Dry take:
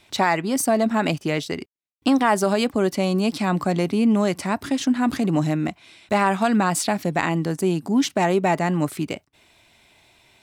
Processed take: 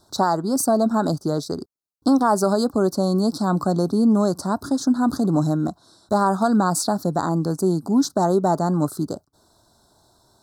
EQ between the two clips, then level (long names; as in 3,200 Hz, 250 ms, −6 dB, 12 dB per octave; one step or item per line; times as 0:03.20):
elliptic band-stop filter 1,400–4,200 Hz, stop band 70 dB
+1.5 dB